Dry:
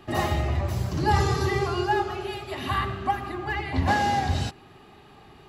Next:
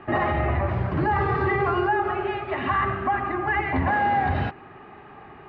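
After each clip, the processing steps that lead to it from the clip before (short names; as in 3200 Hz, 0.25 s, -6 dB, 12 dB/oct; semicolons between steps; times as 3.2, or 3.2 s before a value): inverse Chebyshev low-pass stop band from 10000 Hz, stop band 80 dB; tilt +2 dB/oct; limiter -22.5 dBFS, peak gain reduction 11 dB; gain +8 dB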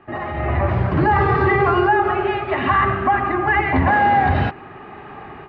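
AGC gain up to 14.5 dB; gain -5.5 dB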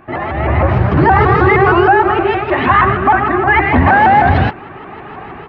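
shaped vibrato saw up 6.4 Hz, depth 160 cents; gain +6.5 dB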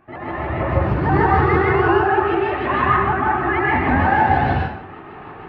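plate-style reverb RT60 0.64 s, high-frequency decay 0.8×, pre-delay 0.115 s, DRR -4.5 dB; gain -12.5 dB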